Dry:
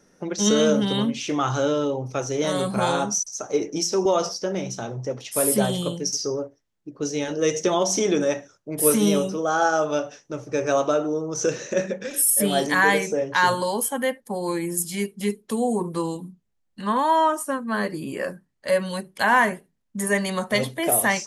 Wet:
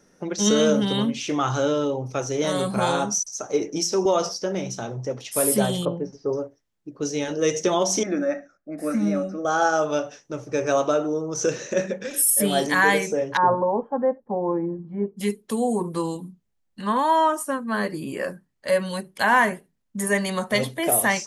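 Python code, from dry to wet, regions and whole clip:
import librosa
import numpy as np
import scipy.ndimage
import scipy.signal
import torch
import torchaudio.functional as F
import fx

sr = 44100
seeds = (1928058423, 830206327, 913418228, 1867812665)

y = fx.chain(x, sr, fx.lowpass(hz=1100.0, slope=12),
    fx.dynamic_eq(hz=850.0, q=0.79, threshold_db=-41.0, ratio=4.0, max_db=6), at=(5.85, 6.33))
y = fx.chain(y, sr, fx.lowpass(hz=3200.0, slope=12),
    fx.fixed_phaser(hz=640.0, stages=8), at=(8.03, 9.45))
y = fx.chain(y, sr, fx.lowpass(hz=1100.0, slope=24),
    fx.dynamic_eq(hz=650.0, q=0.83, threshold_db=-32.0, ratio=4.0, max_db=4), at=(13.37, 15.17))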